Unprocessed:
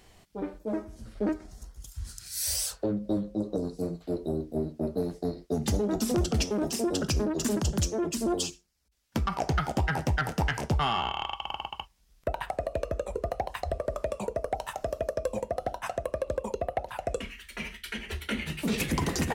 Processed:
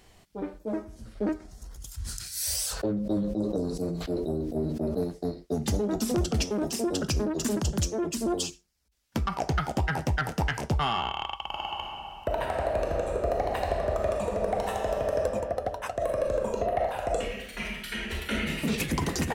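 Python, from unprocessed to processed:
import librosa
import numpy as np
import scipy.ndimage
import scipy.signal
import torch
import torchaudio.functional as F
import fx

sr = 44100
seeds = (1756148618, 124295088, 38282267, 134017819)

y = fx.sustainer(x, sr, db_per_s=29.0, at=(1.58, 5.04))
y = fx.reverb_throw(y, sr, start_s=11.48, length_s=3.72, rt60_s=2.7, drr_db=-2.0)
y = fx.reverb_throw(y, sr, start_s=15.94, length_s=2.66, rt60_s=0.83, drr_db=-1.5)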